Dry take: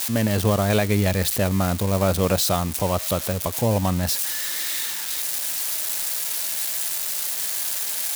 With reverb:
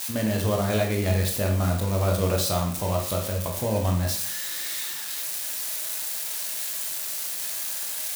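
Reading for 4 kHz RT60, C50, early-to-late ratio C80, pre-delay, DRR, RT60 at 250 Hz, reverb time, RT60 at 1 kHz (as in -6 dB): 0.40 s, 6.5 dB, 10.5 dB, 18 ms, 1.0 dB, 0.50 s, 0.55 s, 0.55 s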